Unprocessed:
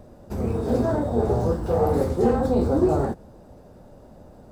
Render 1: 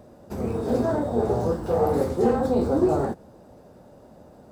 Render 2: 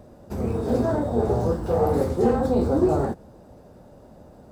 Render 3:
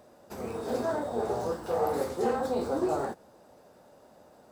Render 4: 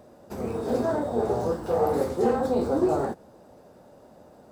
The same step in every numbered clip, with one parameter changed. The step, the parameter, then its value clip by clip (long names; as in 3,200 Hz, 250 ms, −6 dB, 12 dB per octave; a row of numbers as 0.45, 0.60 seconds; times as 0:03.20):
high-pass filter, corner frequency: 140, 49, 950, 360 Hertz